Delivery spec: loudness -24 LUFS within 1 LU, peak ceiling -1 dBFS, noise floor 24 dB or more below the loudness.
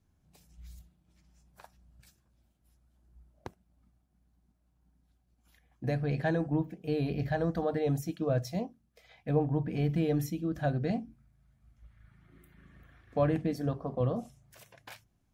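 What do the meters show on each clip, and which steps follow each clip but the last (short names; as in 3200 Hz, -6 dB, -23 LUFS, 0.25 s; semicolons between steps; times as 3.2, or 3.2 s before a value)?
loudness -32.0 LUFS; peak -15.0 dBFS; loudness target -24.0 LUFS
-> gain +8 dB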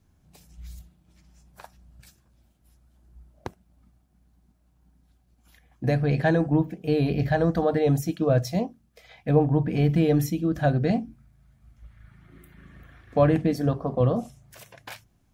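loudness -24.0 LUFS; peak -7.0 dBFS; noise floor -65 dBFS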